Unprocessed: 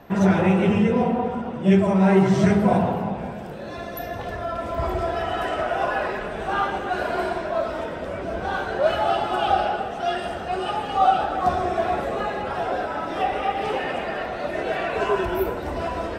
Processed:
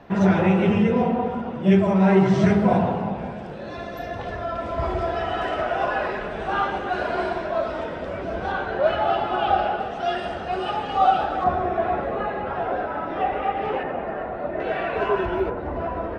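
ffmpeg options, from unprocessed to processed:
ffmpeg -i in.wav -af "asetnsamples=nb_out_samples=441:pad=0,asendcmd='8.52 lowpass f 3300;9.8 lowpass f 5300;11.44 lowpass f 2200;13.83 lowpass f 1300;14.6 lowpass f 2900;15.5 lowpass f 1600',lowpass=5300" out.wav

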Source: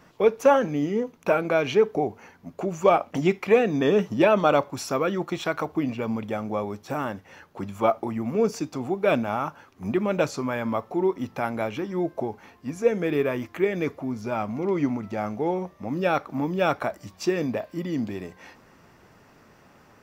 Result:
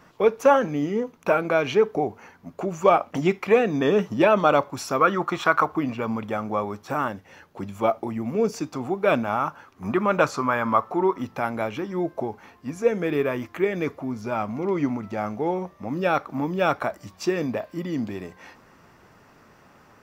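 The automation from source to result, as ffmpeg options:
ffmpeg -i in.wav -af "asetnsamples=nb_out_samples=441:pad=0,asendcmd='5.01 equalizer g 14;5.77 equalizer g 7;7.08 equalizer g -1.5;8.58 equalizer g 5;9.84 equalizer g 12.5;11.22 equalizer g 3',equalizer=frequency=1200:width_type=o:width=1:gain=3.5" out.wav

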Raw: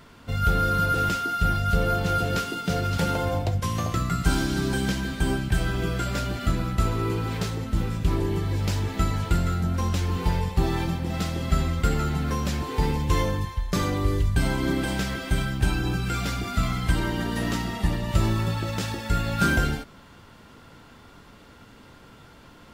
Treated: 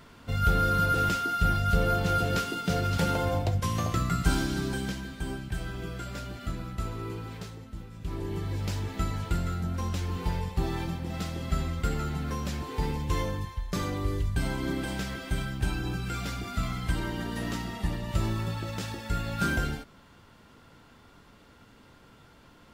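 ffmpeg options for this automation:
ffmpeg -i in.wav -af "volume=10dB,afade=type=out:start_time=4.17:duration=0.93:silence=0.398107,afade=type=out:start_time=7.15:duration=0.75:silence=0.398107,afade=type=in:start_time=7.9:duration=0.53:silence=0.251189" out.wav

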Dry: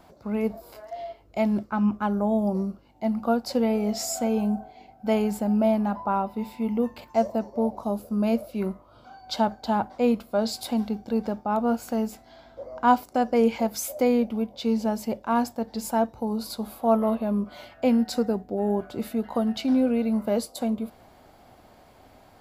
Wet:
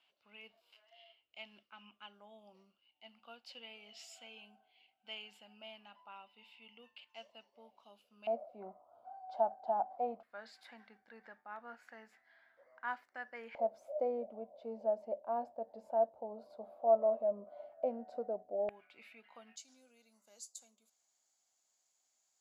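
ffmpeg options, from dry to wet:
ffmpeg -i in.wav -af "asetnsamples=nb_out_samples=441:pad=0,asendcmd='8.27 bandpass f 720;10.23 bandpass f 1800;13.55 bandpass f 620;18.69 bandpass f 2400;19.56 bandpass f 6800',bandpass=frequency=2900:width_type=q:width=8.4:csg=0" out.wav

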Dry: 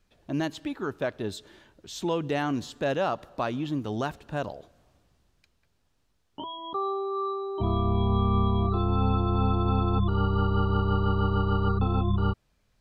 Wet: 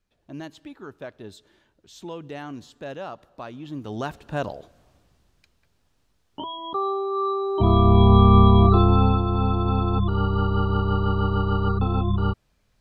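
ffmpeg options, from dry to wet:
ffmpeg -i in.wav -af "volume=10.5dB,afade=type=in:start_time=3.59:duration=0.83:silence=0.251189,afade=type=in:start_time=7.09:duration=0.93:silence=0.473151,afade=type=out:start_time=8.73:duration=0.5:silence=0.398107" out.wav

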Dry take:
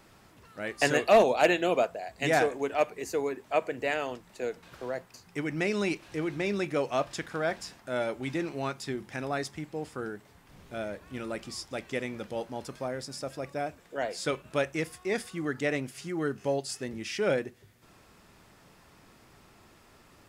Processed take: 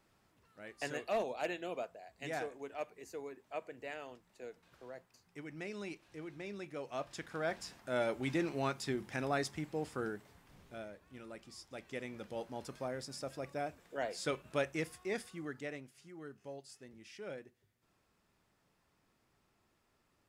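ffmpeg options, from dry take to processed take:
ffmpeg -i in.wav -af "volume=5.5dB,afade=type=in:start_time=6.79:duration=1.39:silence=0.237137,afade=type=out:start_time=10.07:duration=0.86:silence=0.266073,afade=type=in:start_time=11.52:duration=1.16:silence=0.398107,afade=type=out:start_time=14.86:duration=1.03:silence=0.237137" out.wav

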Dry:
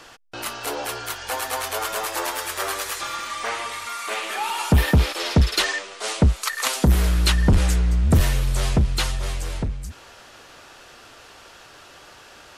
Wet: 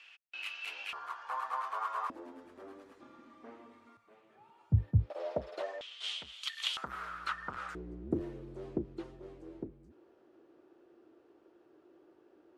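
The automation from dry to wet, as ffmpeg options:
ffmpeg -i in.wav -af "asetnsamples=nb_out_samples=441:pad=0,asendcmd='0.93 bandpass f 1100;2.1 bandpass f 260;3.97 bandpass f 110;5.1 bandpass f 600;5.81 bandpass f 3200;6.77 bandpass f 1300;7.75 bandpass f 340',bandpass=frequency=2600:width_type=q:width=6.7:csg=0" out.wav

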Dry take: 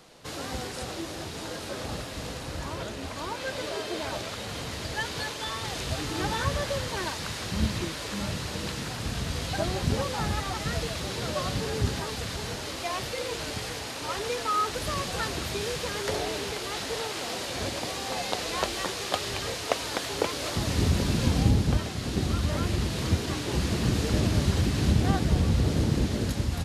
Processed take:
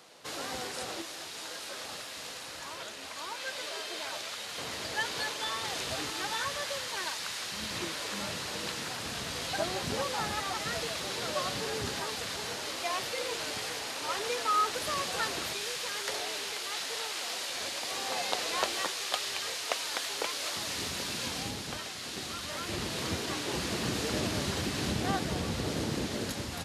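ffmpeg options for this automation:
ffmpeg -i in.wav -af "asetnsamples=nb_out_samples=441:pad=0,asendcmd='1.02 highpass f 1500;4.58 highpass f 480;6.1 highpass f 1300;7.71 highpass f 520;15.53 highpass f 1400;17.91 highpass f 590;18.87 highpass f 1400;22.68 highpass f 450',highpass=frequency=490:poles=1" out.wav

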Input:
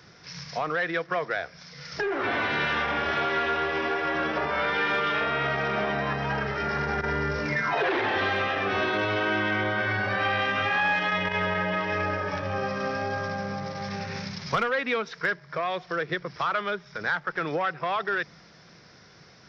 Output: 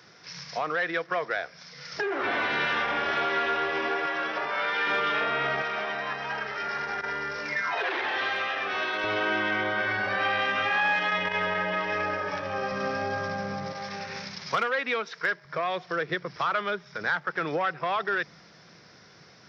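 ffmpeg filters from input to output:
ffmpeg -i in.wav -af "asetnsamples=nb_out_samples=441:pad=0,asendcmd='4.06 highpass f 760;4.87 highpass f 290;5.62 highpass f 1000;9.04 highpass f 310;12.72 highpass f 110;13.73 highpass f 420;15.45 highpass f 110',highpass=frequency=280:poles=1" out.wav

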